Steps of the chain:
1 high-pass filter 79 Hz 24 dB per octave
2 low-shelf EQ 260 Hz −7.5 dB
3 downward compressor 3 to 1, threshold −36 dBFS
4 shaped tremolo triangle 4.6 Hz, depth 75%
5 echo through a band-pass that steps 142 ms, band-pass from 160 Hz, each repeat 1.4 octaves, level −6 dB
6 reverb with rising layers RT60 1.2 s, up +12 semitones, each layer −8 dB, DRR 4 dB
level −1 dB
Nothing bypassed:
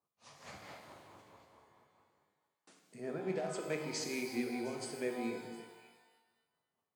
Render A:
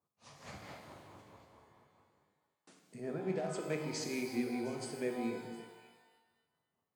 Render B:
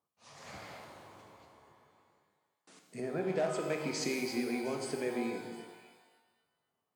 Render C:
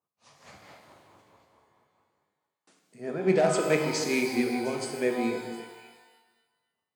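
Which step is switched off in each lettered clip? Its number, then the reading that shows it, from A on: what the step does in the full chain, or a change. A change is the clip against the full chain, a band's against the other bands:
2, 125 Hz band +4.5 dB
4, 8 kHz band −1.5 dB
3, average gain reduction 8.5 dB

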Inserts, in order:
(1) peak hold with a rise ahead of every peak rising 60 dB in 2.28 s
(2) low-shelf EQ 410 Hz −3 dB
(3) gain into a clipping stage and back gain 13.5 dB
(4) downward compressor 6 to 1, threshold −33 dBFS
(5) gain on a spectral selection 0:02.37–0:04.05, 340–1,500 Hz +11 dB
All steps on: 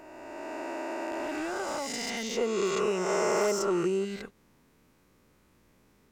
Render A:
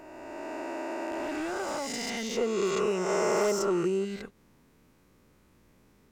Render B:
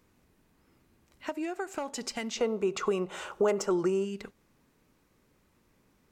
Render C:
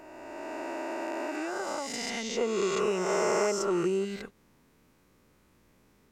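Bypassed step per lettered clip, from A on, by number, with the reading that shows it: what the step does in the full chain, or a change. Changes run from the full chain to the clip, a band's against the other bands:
2, 125 Hz band +1.5 dB
1, 125 Hz band +4.0 dB
3, distortion level −15 dB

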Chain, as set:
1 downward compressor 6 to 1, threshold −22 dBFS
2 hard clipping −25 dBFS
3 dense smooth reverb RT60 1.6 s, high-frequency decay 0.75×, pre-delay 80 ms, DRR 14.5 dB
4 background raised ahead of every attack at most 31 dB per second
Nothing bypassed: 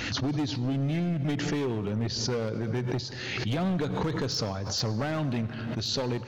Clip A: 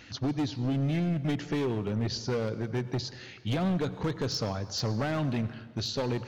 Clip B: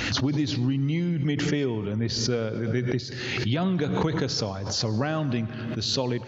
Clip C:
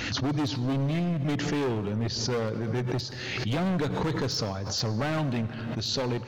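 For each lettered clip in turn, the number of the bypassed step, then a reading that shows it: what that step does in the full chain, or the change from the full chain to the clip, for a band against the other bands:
4, change in crest factor −3.0 dB
2, distortion level −10 dB
1, average gain reduction 2.0 dB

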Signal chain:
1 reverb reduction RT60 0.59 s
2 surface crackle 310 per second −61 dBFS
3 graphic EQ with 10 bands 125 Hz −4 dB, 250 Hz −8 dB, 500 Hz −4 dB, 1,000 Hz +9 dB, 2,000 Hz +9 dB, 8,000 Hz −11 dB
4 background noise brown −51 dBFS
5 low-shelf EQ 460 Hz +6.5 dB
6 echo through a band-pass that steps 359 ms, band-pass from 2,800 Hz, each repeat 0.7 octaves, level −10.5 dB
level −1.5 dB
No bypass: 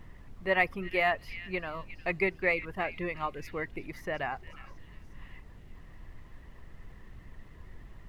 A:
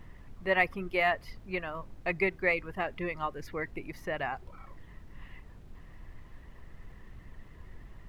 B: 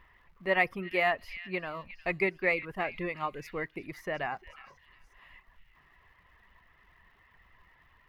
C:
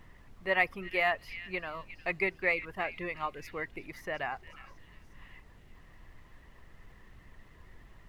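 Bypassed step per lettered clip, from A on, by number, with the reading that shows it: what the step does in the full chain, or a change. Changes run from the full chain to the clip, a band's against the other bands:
6, echo-to-direct ratio −15.0 dB to none audible
4, 125 Hz band −1.5 dB
5, 125 Hz band −5.0 dB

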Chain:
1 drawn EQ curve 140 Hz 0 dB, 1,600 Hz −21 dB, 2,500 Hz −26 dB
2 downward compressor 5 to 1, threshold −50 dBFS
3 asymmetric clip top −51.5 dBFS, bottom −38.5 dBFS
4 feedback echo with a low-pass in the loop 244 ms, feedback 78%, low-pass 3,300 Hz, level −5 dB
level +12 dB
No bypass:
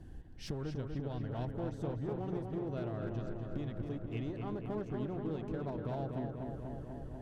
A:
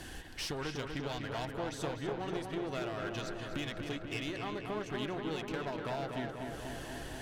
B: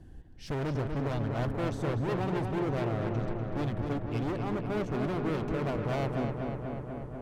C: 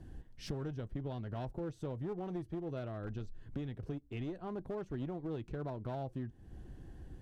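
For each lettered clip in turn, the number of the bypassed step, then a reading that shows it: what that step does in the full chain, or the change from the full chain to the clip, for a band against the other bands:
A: 1, 4 kHz band +12.5 dB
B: 2, average gain reduction 11.0 dB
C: 4, echo-to-direct ratio −3.0 dB to none audible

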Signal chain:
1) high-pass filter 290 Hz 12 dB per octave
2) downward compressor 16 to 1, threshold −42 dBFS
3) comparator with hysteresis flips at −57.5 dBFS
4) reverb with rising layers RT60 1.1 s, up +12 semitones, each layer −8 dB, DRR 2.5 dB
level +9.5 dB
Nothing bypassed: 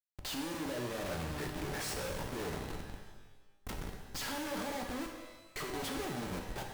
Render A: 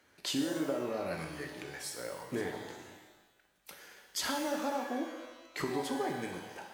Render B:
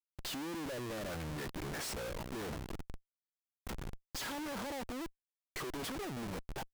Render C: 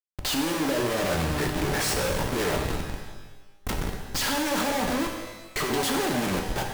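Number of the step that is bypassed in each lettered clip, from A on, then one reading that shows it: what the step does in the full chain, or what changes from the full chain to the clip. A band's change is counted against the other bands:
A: 3, change in crest factor +5.5 dB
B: 4, change in crest factor −5.5 dB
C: 2, average gain reduction 7.5 dB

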